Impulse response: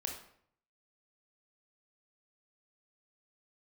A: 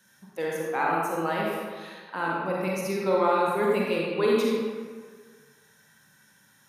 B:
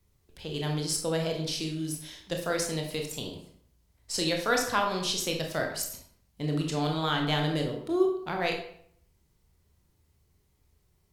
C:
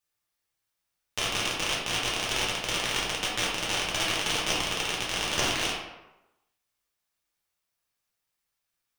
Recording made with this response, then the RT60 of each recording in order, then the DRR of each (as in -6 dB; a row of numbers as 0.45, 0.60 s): B; 1.7, 0.65, 1.0 s; -4.0, 1.5, -6.5 dB